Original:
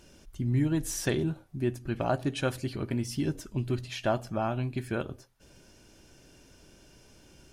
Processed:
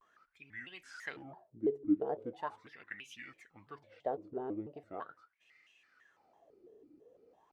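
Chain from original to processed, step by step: wah 0.4 Hz 360–2400 Hz, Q 15; shaped vibrato square 3 Hz, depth 250 cents; gain +10.5 dB

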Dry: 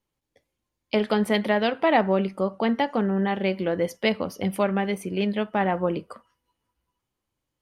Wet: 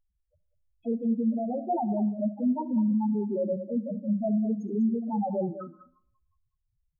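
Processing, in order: low shelf 130 Hz +11 dB; notches 60/120/180/240/300 Hz; transient shaper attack -11 dB, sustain +1 dB; compressor 3:1, threshold -28 dBFS, peak gain reduction 9 dB; loudest bins only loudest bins 2; echo 0.214 s -12 dB; digital reverb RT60 0.65 s, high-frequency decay 0.5×, pre-delay 35 ms, DRR 18 dB; speed mistake 44.1 kHz file played as 48 kHz; gain +6 dB

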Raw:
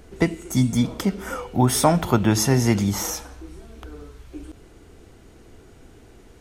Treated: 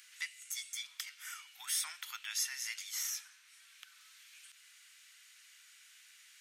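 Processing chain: inverse Chebyshev high-pass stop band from 540 Hz, stop band 60 dB; three-band squash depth 40%; gain -7.5 dB

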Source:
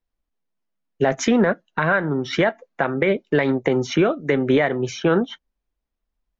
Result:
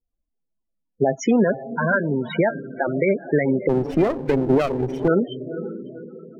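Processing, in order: diffused feedback echo 0.507 s, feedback 42%, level -10.5 dB; loudest bins only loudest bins 16; 3.69–5.08 running maximum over 17 samples

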